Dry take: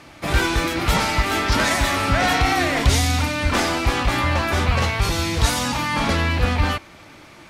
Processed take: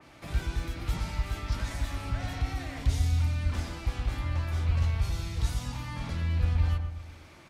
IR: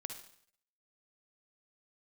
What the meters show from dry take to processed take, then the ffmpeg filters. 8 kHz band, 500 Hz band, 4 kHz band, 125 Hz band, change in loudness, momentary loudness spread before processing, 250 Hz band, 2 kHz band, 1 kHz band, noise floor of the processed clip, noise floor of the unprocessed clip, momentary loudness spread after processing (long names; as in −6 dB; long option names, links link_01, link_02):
−19.0 dB, −20.5 dB, −19.0 dB, −5.5 dB, −11.5 dB, 3 LU, −16.5 dB, −20.5 dB, −21.0 dB, −52 dBFS, −45 dBFS, 8 LU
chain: -filter_complex "[0:a]acrossover=split=140[link_01][link_02];[link_02]acompressor=threshold=-45dB:ratio=2[link_03];[link_01][link_03]amix=inputs=2:normalize=0,asplit=2[link_04][link_05];[link_05]adelay=121,lowpass=frequency=1300:poles=1,volume=-4.5dB,asplit=2[link_06][link_07];[link_07]adelay=121,lowpass=frequency=1300:poles=1,volume=0.49,asplit=2[link_08][link_09];[link_09]adelay=121,lowpass=frequency=1300:poles=1,volume=0.49,asplit=2[link_10][link_11];[link_11]adelay=121,lowpass=frequency=1300:poles=1,volume=0.49,asplit=2[link_12][link_13];[link_13]adelay=121,lowpass=frequency=1300:poles=1,volume=0.49,asplit=2[link_14][link_15];[link_15]adelay=121,lowpass=frequency=1300:poles=1,volume=0.49[link_16];[link_06][link_08][link_10][link_12][link_14][link_16]amix=inputs=6:normalize=0[link_17];[link_04][link_17]amix=inputs=2:normalize=0,adynamicequalizer=threshold=0.00447:dfrequency=2600:dqfactor=0.7:tfrequency=2600:tqfactor=0.7:attack=5:release=100:ratio=0.375:range=1.5:mode=boostabove:tftype=highshelf,volume=-8dB"